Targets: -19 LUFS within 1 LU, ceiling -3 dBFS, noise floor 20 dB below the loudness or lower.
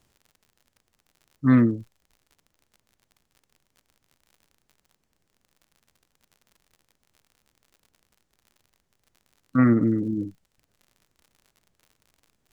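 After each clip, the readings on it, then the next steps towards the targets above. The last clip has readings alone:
tick rate 56 per s; loudness -22.5 LUFS; peak level -8.0 dBFS; loudness target -19.0 LUFS
-> de-click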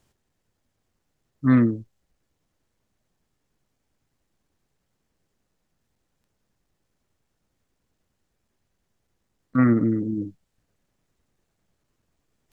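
tick rate 0.16 per s; loudness -22.0 LUFS; peak level -8.0 dBFS; loudness target -19.0 LUFS
-> trim +3 dB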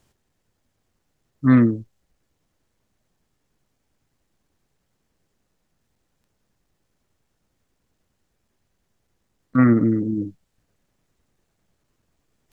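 loudness -19.0 LUFS; peak level -5.0 dBFS; noise floor -74 dBFS

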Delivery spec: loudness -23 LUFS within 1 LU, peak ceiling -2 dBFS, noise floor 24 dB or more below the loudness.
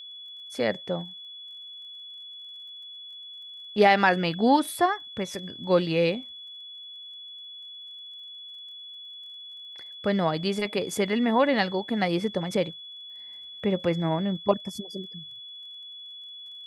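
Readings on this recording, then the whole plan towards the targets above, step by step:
tick rate 29 per s; steady tone 3.4 kHz; tone level -40 dBFS; loudness -26.0 LUFS; peak level -6.0 dBFS; loudness target -23.0 LUFS
-> de-click; band-stop 3.4 kHz, Q 30; trim +3 dB

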